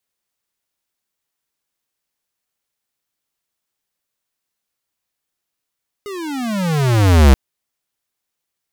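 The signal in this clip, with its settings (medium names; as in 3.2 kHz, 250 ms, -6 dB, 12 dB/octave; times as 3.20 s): gliding synth tone square, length 1.28 s, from 419 Hz, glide -32.5 st, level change +22 dB, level -6.5 dB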